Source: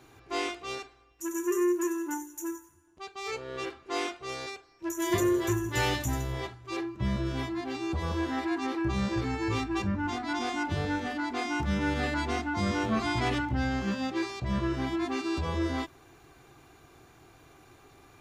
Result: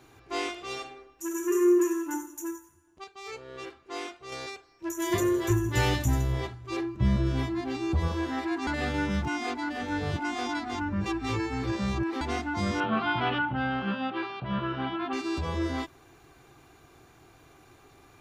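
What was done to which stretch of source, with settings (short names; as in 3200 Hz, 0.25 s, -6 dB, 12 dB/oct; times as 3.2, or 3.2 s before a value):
0.51–2.11 reverb throw, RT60 0.8 s, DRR 3.5 dB
3.04–4.32 gain -5 dB
5.5–8.08 low shelf 250 Hz +7.5 dB
8.67–12.21 reverse
12.8–15.13 speaker cabinet 150–3400 Hz, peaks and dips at 150 Hz +8 dB, 330 Hz -4 dB, 840 Hz +5 dB, 1400 Hz +9 dB, 2000 Hz -5 dB, 3000 Hz +7 dB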